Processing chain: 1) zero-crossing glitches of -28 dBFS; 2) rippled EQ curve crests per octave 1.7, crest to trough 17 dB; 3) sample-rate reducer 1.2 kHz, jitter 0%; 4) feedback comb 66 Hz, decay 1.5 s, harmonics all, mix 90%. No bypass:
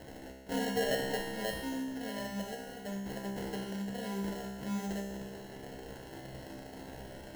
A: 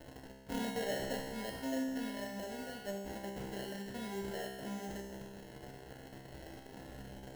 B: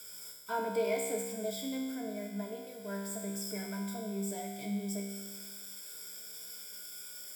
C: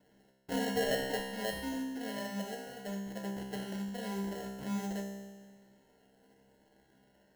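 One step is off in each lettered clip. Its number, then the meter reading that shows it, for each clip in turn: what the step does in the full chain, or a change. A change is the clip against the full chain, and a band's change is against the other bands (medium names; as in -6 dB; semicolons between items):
2, loudness change -4.0 LU; 3, 8 kHz band +7.5 dB; 1, distortion -9 dB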